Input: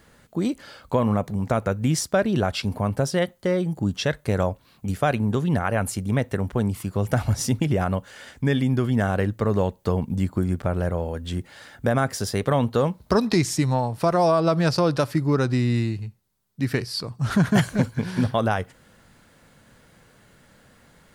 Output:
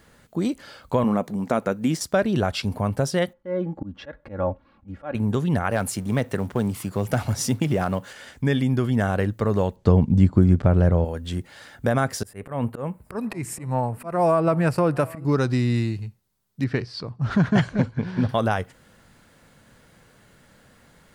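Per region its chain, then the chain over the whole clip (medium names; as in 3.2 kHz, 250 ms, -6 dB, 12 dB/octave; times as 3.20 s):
1.04–2.01 s: resonant low shelf 150 Hz -11 dB, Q 1.5 + de-esser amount 60%
3.33–5.15 s: low-pass 1.6 kHz + slow attack 216 ms + comb 3.6 ms, depth 69%
5.71–8.13 s: companding laws mixed up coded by mu + high-pass 110 Hz + hard clipper -11.5 dBFS
9.76–11.05 s: low-pass 6.4 kHz + bass shelf 410 Hz +9 dB
12.23–15.25 s: high-order bell 4.6 kHz -14.5 dB 1.2 oct + slow attack 199 ms + delay 780 ms -22.5 dB
16.64–18.29 s: distance through air 130 m + tape noise reduction on one side only decoder only
whole clip: none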